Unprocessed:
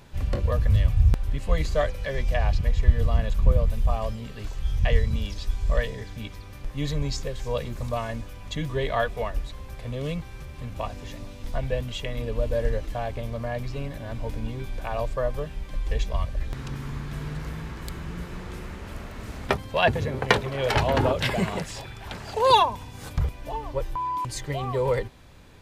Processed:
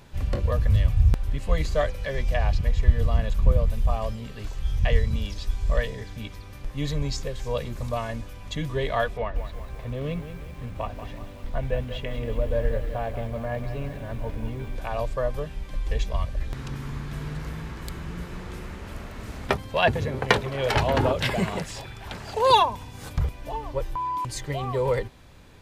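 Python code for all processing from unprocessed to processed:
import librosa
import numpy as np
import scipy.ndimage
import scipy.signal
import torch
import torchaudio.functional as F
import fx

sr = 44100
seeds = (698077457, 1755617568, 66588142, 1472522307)

y = fx.chain(x, sr, fx.lowpass(hz=2900.0, slope=12),
    fx.echo_crushed(ms=186, feedback_pct=55, bits=8, wet_db=-10.0), at=(9.17, 14.76))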